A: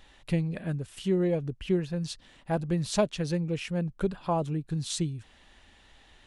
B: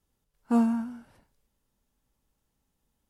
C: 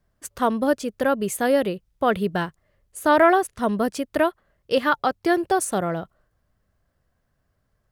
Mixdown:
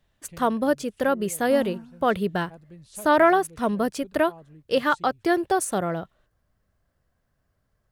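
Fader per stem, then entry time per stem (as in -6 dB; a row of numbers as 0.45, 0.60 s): -18.5, -10.5, -1.5 dB; 0.00, 1.00, 0.00 s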